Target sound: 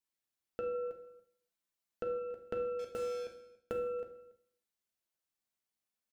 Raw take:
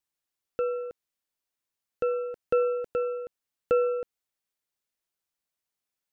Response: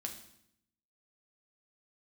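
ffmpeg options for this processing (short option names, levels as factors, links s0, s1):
-filter_complex "[0:a]asettb=1/sr,asplit=3[s0][s1][s2];[s0]atrim=end=0.744[s3];[s1]atrim=start=0.74:end=2.18,asetpts=PTS-STARTPTS,afade=t=in:d=0.004:c=qsin,afade=t=out:st=1.436:d=0.004:c=qsin,aecho=1:1:5.9:0.45,atrim=end_sample=63504[s4];[s2]atrim=start=2.176[s5];[s3][s4]acrossfade=d=0.004:c1=hsin:c2=qsin[s6];[s6][s5]acrossfade=d=0.004:c1=qsin:c2=hsin,acompressor=threshold=0.0251:ratio=8,asettb=1/sr,asplit=3[s7][s8][s9];[s7]atrim=end=2.794[s10];[s8]atrim=start=2.79:end=3.72,asetpts=PTS-STARTPTS,afade=t=in:d=0.004:c=qsin,afade=t=out:st=0.926:d=0.004:c=qsin,acrusher=bits=6:mix=0:aa=0.5[s11];[s9]atrim=start=3.716[s12];[s10][s11]acrossfade=d=0.004:c1=hsin:c2=qsin[s13];[s13][s12]acrossfade=d=0.004:c1=qsin:c2=hsin,aecho=1:1:283:0.0794[s14];[1:a]atrim=start_sample=2205,afade=t=out:st=0.38:d=0.01,atrim=end_sample=17199[s15];[s14][s15]afir=irnorm=-1:irlink=0,volume=0.75"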